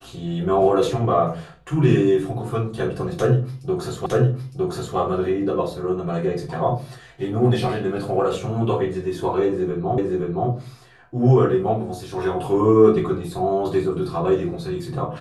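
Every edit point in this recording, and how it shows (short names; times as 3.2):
4.06 repeat of the last 0.91 s
9.98 repeat of the last 0.52 s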